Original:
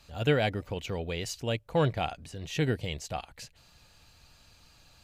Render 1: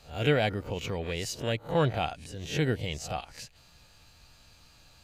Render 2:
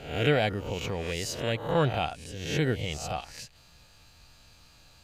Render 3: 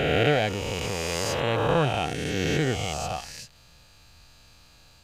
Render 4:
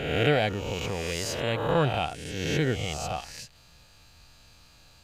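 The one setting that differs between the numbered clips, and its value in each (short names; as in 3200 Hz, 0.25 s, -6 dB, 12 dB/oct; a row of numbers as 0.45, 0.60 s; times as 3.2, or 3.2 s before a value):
spectral swells, rising 60 dB in: 0.3, 0.63, 3.18, 1.33 s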